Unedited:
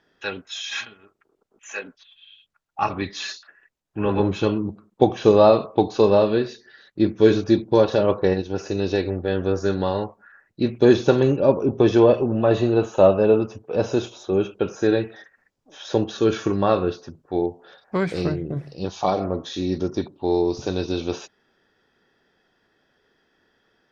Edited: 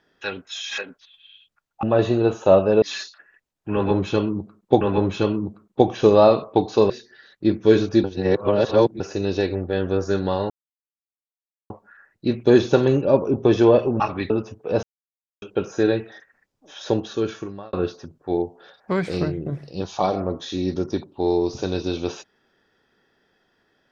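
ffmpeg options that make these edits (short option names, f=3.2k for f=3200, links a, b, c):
-filter_complex "[0:a]asplit=14[a][b][c][d][e][f][g][h][i][j][k][l][m][n];[a]atrim=end=0.782[o];[b]atrim=start=1.758:end=2.812[p];[c]atrim=start=12.348:end=13.342[q];[d]atrim=start=3.108:end=5.102[r];[e]atrim=start=4.028:end=6.122[s];[f]atrim=start=6.448:end=7.592[t];[g]atrim=start=7.588:end=8.552,asetpts=PTS-STARTPTS,areverse[u];[h]atrim=start=8.548:end=10.05,asetpts=PTS-STARTPTS,afade=t=out:st=1.498:d=0.004:c=hsin,apad=pad_dur=1.2[v];[i]atrim=start=10.05:end=12.352,asetpts=PTS-STARTPTS,afade=t=in:d=0.004:c=hsin[w];[j]atrim=start=2.808:end=3.112[x];[k]atrim=start=13.338:end=13.87,asetpts=PTS-STARTPTS,afade=t=out:st=0.528:d=0.004:c=hsin[y];[l]atrim=start=13.87:end=14.46,asetpts=PTS-STARTPTS,volume=0[z];[m]atrim=start=14.46:end=16.77,asetpts=PTS-STARTPTS,afade=t=in:d=0.004:c=hsin,afade=t=out:st=1.45:d=0.86[aa];[n]atrim=start=16.77,asetpts=PTS-STARTPTS,afade=t=in:d=0.004:c=hsin[ab];[o][p]acrossfade=d=0.004:c1=hsin:c2=hsin[ac];[ac][q]acrossfade=d=0.004:c1=hsin:c2=hsin[ad];[ad][r]acrossfade=d=0.004:c1=hsin:c2=hsin[ae];[ae][s]acrossfade=d=0.004:c1=hsin:c2=hsin[af];[af][t]acrossfade=d=0.004:c1=hsin:c2=hsin[ag];[ag][u]acrossfade=d=0.004:c1=hsin:c2=hsin[ah];[v][w]concat=n=2:v=0:a=1[ai];[ah][ai]acrossfade=d=0.004:c1=hsin:c2=hsin[aj];[aj][x]acrossfade=d=0.004:c1=hsin:c2=hsin[ak];[y][z][aa][ab]concat=n=4:v=0:a=1[al];[ak][al]acrossfade=d=0.004:c1=hsin:c2=hsin"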